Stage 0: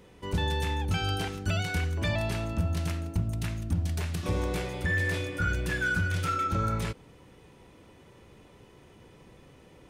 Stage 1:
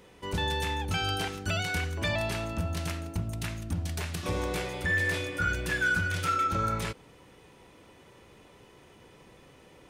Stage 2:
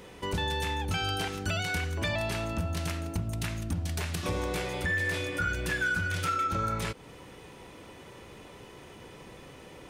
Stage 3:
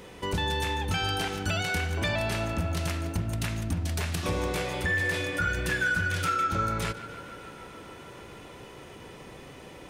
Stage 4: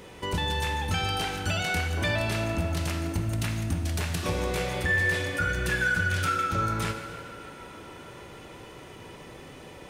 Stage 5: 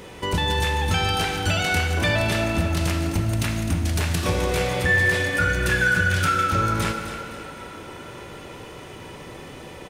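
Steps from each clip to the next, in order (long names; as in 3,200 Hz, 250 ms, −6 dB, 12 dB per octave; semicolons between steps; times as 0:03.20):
low-shelf EQ 330 Hz −7 dB; level +2.5 dB
downward compressor 2 to 1, threshold −40 dBFS, peak gain reduction 9.5 dB; level +6.5 dB
tape delay 147 ms, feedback 89%, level −13 dB, low-pass 4,600 Hz; level +2 dB
reverb whose tail is shaped and stops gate 470 ms falling, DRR 6.5 dB
repeating echo 258 ms, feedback 43%, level −11 dB; level +5.5 dB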